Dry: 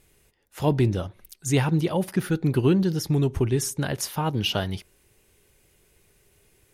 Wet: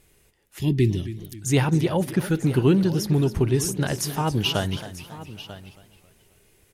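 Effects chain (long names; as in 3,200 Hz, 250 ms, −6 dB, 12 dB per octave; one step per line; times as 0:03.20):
gain on a spectral selection 0:00.57–0:01.20, 410–1,700 Hz −20 dB
on a send: single-tap delay 942 ms −15.5 dB
on the sum: feedback echo with a swinging delay time 270 ms, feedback 44%, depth 141 cents, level −14.5 dB
level +1.5 dB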